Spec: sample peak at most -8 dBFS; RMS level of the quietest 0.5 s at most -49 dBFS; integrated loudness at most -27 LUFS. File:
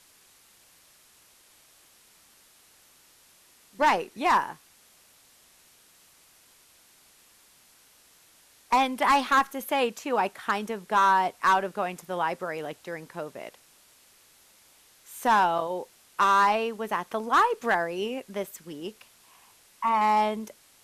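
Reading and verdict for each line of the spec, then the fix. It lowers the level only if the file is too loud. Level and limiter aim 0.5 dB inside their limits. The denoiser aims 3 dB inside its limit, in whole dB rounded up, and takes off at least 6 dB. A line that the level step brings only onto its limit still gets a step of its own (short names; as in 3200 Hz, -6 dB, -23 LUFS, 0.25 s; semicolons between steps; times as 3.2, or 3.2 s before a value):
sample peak -14.0 dBFS: OK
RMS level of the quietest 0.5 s -59 dBFS: OK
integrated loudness -25.5 LUFS: fail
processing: gain -2 dB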